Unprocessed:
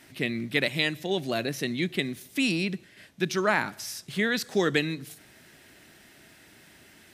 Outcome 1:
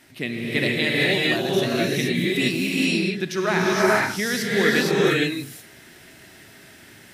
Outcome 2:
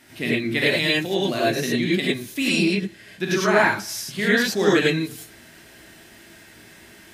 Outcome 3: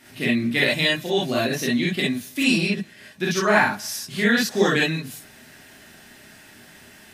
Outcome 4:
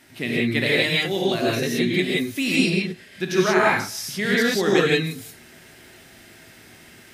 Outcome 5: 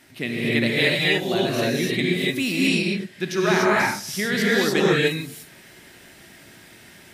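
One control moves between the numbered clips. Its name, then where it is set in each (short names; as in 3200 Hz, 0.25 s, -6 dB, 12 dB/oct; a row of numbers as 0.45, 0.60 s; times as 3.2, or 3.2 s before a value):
non-linear reverb, gate: 500, 130, 80, 200, 320 ms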